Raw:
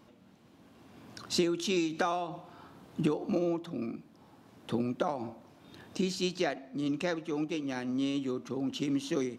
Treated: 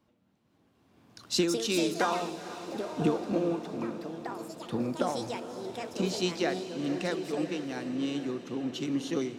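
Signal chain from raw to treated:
delay with pitch and tempo change per echo 502 ms, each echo +5 semitones, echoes 2, each echo −6 dB
feedback delay with all-pass diffusion 466 ms, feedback 67%, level −10 dB
multiband upward and downward expander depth 40%

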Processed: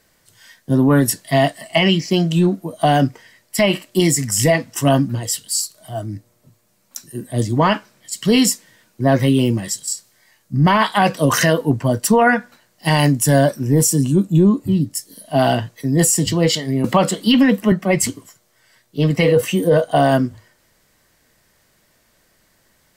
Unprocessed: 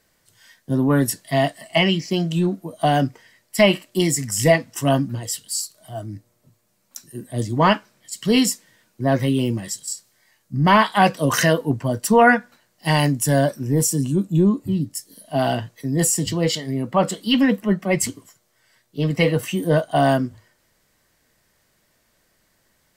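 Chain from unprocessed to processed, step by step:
0:19.28–0:20.11: parametric band 490 Hz +11.5 dB 0.22 octaves
brickwall limiter −10.5 dBFS, peak gain reduction 8.5 dB
0:16.84–0:17.72: multiband upward and downward compressor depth 70%
level +5 dB

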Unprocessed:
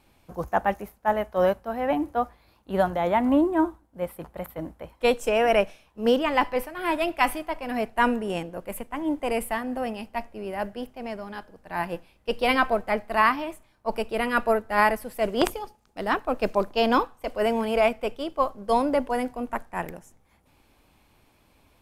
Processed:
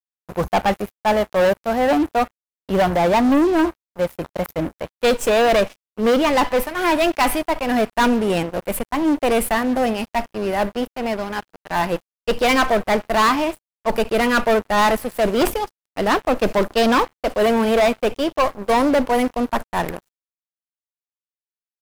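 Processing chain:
leveller curve on the samples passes 5
bit reduction 9 bits
level −7 dB

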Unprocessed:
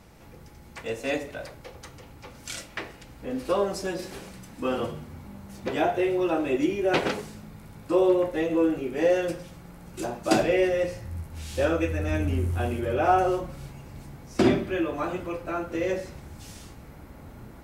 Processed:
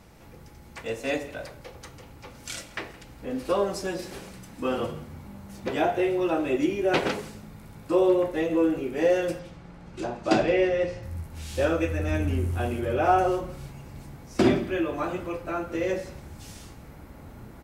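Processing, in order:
0:09.39–0:11.03: low-pass filter 4,900 Hz 12 dB per octave
single-tap delay 167 ms −20.5 dB

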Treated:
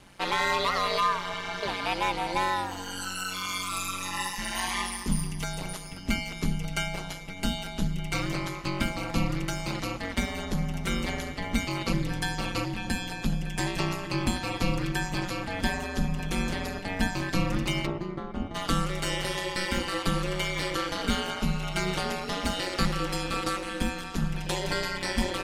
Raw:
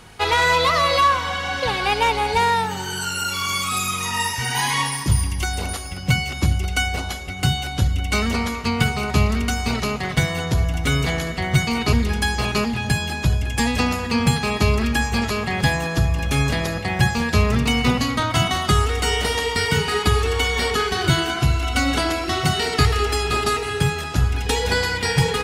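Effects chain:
0:17.85–0:18.54: resonant band-pass 470 Hz → 160 Hz, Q 0.7
ring modulation 93 Hz
level −6 dB

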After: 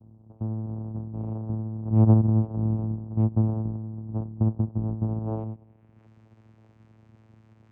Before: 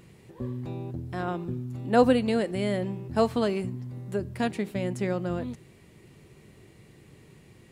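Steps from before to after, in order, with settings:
low-pass filter sweep 260 Hz → 2,500 Hz, 0:05.18–0:06.10
channel vocoder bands 4, saw 110 Hz

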